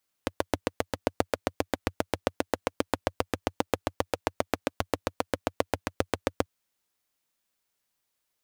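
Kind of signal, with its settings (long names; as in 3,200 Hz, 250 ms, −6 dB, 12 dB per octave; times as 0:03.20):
pulse-train model of a single-cylinder engine, steady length 6.19 s, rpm 900, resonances 92/290/490 Hz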